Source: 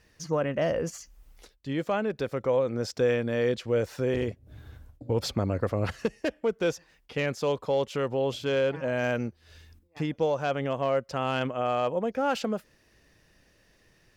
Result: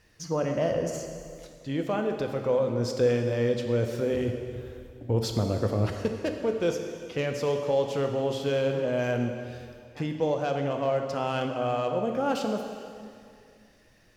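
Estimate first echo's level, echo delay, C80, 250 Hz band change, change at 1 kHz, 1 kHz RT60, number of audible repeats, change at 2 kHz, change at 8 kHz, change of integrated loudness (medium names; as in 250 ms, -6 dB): no echo, no echo, 6.5 dB, +1.5 dB, -0.5 dB, 2.3 s, no echo, -3.0 dB, +1.0 dB, +0.5 dB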